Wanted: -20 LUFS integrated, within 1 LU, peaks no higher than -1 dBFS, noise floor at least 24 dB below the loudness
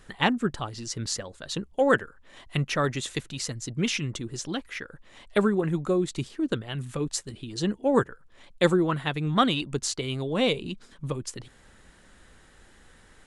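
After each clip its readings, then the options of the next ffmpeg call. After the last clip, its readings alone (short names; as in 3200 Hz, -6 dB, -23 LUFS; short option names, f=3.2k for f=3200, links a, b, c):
loudness -28.0 LUFS; peak -7.5 dBFS; loudness target -20.0 LUFS
-> -af "volume=8dB,alimiter=limit=-1dB:level=0:latency=1"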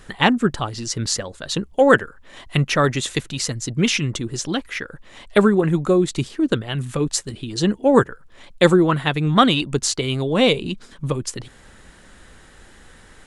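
loudness -20.0 LUFS; peak -1.0 dBFS; noise floor -48 dBFS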